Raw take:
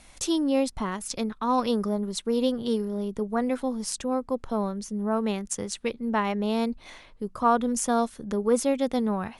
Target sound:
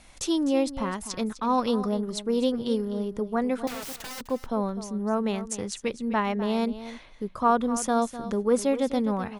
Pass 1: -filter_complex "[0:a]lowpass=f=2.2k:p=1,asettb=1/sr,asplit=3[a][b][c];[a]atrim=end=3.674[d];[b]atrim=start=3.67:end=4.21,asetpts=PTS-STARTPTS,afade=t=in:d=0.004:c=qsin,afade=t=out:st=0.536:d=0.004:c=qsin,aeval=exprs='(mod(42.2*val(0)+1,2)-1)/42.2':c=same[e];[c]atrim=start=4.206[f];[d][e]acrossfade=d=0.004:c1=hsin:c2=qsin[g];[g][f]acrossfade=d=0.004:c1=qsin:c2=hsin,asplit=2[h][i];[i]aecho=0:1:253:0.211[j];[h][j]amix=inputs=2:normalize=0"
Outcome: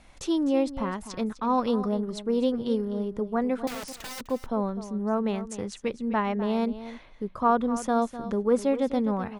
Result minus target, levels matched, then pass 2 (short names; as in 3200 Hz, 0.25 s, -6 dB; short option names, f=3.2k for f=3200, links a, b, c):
8000 Hz band -7.0 dB
-filter_complex "[0:a]lowpass=f=8.4k:p=1,asettb=1/sr,asplit=3[a][b][c];[a]atrim=end=3.674[d];[b]atrim=start=3.67:end=4.21,asetpts=PTS-STARTPTS,afade=t=in:d=0.004:c=qsin,afade=t=out:st=0.536:d=0.004:c=qsin,aeval=exprs='(mod(42.2*val(0)+1,2)-1)/42.2':c=same[e];[c]atrim=start=4.206[f];[d][e]acrossfade=d=0.004:c1=hsin:c2=qsin[g];[g][f]acrossfade=d=0.004:c1=qsin:c2=hsin,asplit=2[h][i];[i]aecho=0:1:253:0.211[j];[h][j]amix=inputs=2:normalize=0"